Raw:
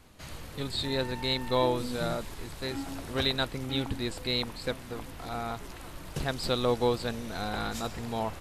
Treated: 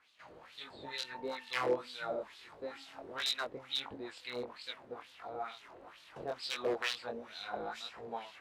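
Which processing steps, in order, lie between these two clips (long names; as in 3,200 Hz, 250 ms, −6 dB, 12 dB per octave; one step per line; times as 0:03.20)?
wrap-around overflow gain 18 dB
chorus effect 1.5 Hz, delay 19 ms, depth 5.7 ms
auto-filter band-pass sine 2.2 Hz 450–3,800 Hz
level +3 dB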